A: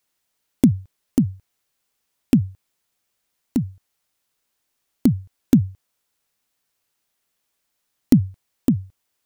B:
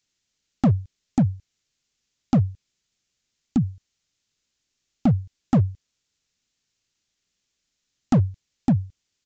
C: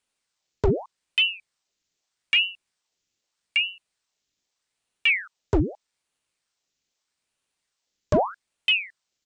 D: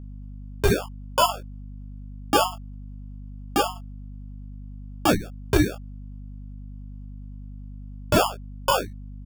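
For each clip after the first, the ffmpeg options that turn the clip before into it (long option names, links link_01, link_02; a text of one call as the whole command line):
ffmpeg -i in.wav -af "equalizer=frequency=860:width_type=o:width=2.4:gain=-14,aresample=16000,volume=18dB,asoftclip=hard,volume=-18dB,aresample=44100,volume=4.5dB" out.wav
ffmpeg -i in.wav -af "aeval=exprs='val(0)*sin(2*PI*1500*n/s+1500*0.9/0.81*sin(2*PI*0.81*n/s))':channel_layout=same" out.wav
ffmpeg -i in.wav -af "acrusher=samples=22:mix=1:aa=0.000001,aecho=1:1:17|27:0.531|0.398,aeval=exprs='val(0)+0.0141*(sin(2*PI*50*n/s)+sin(2*PI*2*50*n/s)/2+sin(2*PI*3*50*n/s)/3+sin(2*PI*4*50*n/s)/4+sin(2*PI*5*50*n/s)/5)':channel_layout=same" out.wav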